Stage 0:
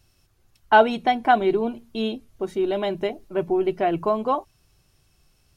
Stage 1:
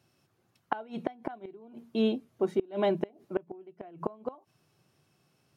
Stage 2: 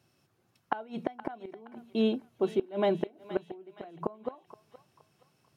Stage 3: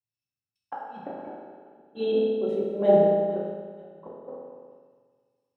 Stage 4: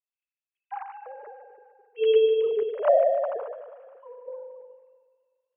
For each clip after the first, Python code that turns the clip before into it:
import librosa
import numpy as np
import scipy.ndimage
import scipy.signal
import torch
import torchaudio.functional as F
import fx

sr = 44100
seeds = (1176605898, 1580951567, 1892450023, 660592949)

y1 = scipy.signal.sosfilt(scipy.signal.butter(4, 130.0, 'highpass', fs=sr, output='sos'), x)
y1 = fx.high_shelf(y1, sr, hz=2500.0, db=-10.0)
y1 = fx.gate_flip(y1, sr, shuts_db=-16.0, range_db=-27)
y2 = fx.echo_thinned(y1, sr, ms=471, feedback_pct=49, hz=950.0, wet_db=-12.0)
y3 = fx.envelope_sharpen(y2, sr, power=1.5)
y3 = fx.rev_fdn(y3, sr, rt60_s=3.3, lf_ratio=1.0, hf_ratio=0.8, size_ms=11.0, drr_db=-8.0)
y3 = fx.band_widen(y3, sr, depth_pct=100)
y3 = F.gain(torch.from_numpy(y3), -5.5).numpy()
y4 = fx.sine_speech(y3, sr)
y4 = fx.high_shelf(y4, sr, hz=2400.0, db=11.5)
y4 = fx.echo_wet_highpass(y4, sr, ms=149, feedback_pct=60, hz=1400.0, wet_db=-11.5)